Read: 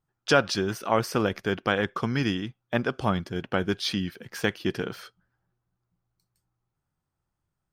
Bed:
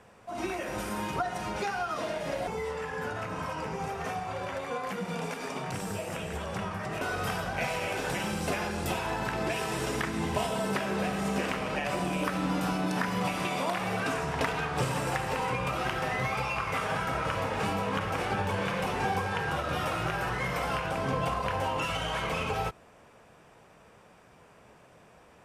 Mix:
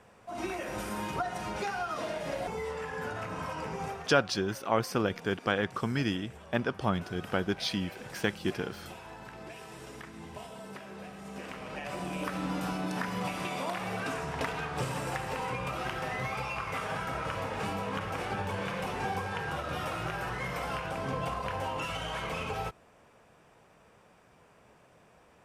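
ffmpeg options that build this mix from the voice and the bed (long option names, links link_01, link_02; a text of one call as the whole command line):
ffmpeg -i stem1.wav -i stem2.wav -filter_complex "[0:a]adelay=3800,volume=-4dB[link_01];[1:a]volume=8.5dB,afade=type=out:start_time=3.9:duration=0.2:silence=0.237137,afade=type=in:start_time=11.24:duration=1.13:silence=0.298538[link_02];[link_01][link_02]amix=inputs=2:normalize=0" out.wav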